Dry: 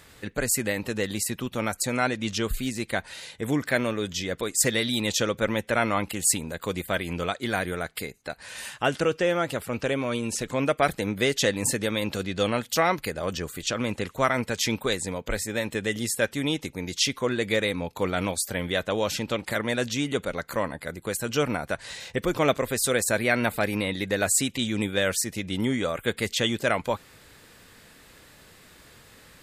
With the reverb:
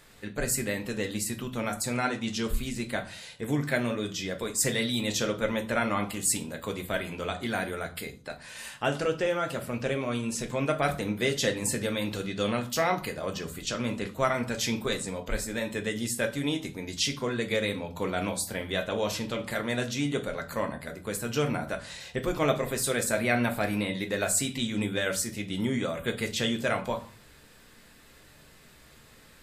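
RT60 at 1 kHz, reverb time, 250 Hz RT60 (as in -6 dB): 0.45 s, 0.40 s, 0.55 s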